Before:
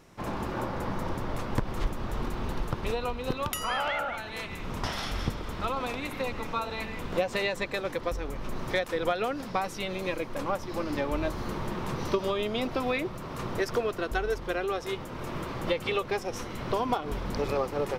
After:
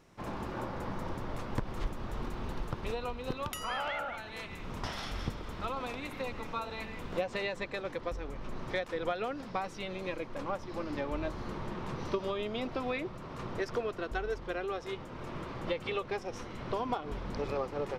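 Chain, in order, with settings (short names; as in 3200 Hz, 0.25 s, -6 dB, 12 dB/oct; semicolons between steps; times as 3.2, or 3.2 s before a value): bell 14000 Hz -5 dB 0.99 oct, from 7.21 s -15 dB; gain -5.5 dB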